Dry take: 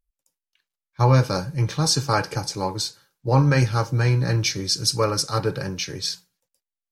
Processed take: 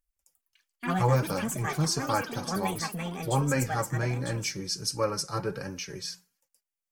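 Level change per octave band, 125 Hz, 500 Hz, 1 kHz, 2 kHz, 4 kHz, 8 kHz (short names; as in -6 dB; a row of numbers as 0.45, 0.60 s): -9.5, -5.5, -4.5, -4.5, -9.5, -6.0 dB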